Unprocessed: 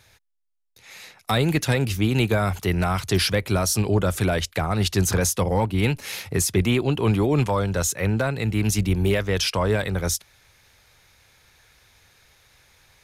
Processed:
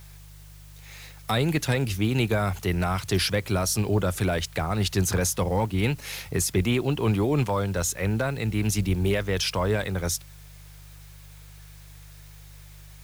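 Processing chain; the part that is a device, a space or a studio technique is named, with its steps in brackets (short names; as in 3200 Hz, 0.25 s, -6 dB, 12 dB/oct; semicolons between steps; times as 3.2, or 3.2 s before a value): video cassette with head-switching buzz (buzz 50 Hz, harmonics 3, -44 dBFS; white noise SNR 28 dB); gain -3 dB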